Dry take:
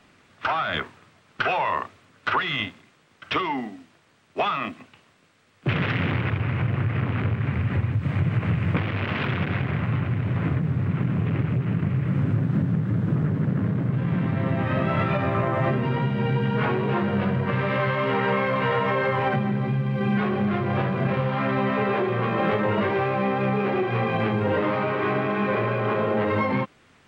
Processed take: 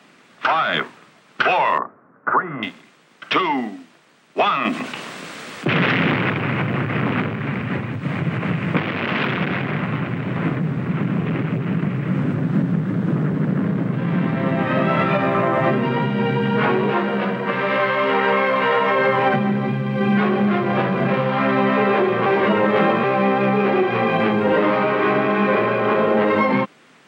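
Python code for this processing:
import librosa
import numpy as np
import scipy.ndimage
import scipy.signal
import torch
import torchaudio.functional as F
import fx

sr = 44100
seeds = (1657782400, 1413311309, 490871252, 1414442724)

y = fx.steep_lowpass(x, sr, hz=1500.0, slope=36, at=(1.78, 2.63))
y = fx.env_flatten(y, sr, amount_pct=50, at=(4.65, 7.21))
y = fx.peak_eq(y, sr, hz=78.0, db=-14.0, octaves=2.0, at=(16.9, 18.99))
y = fx.edit(y, sr, fx.reverse_span(start_s=22.26, length_s=0.78), tone=tone)
y = scipy.signal.sosfilt(scipy.signal.butter(4, 160.0, 'highpass', fs=sr, output='sos'), y)
y = y * 10.0 ** (6.5 / 20.0)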